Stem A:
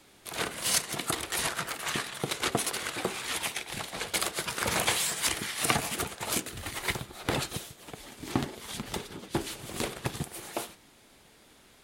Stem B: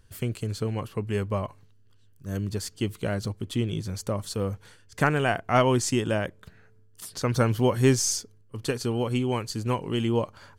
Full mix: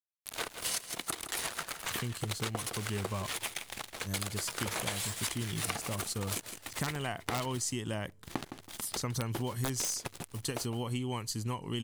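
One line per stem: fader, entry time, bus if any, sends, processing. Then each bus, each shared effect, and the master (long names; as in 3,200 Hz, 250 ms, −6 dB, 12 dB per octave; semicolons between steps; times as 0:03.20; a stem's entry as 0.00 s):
+1.0 dB, 0.00 s, no send, echo send −14 dB, bass and treble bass −10 dB, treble +1 dB; dead-zone distortion −37 dBFS; low-shelf EQ 170 Hz +8 dB
−6.0 dB, 1.80 s, no send, no echo send, high-shelf EQ 4,300 Hz +10.5 dB; comb filter 1 ms, depth 33%; wrap-around overflow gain 9 dB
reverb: not used
echo: repeating echo 162 ms, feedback 24%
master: downward compressor 6 to 1, threshold −31 dBFS, peak gain reduction 11.5 dB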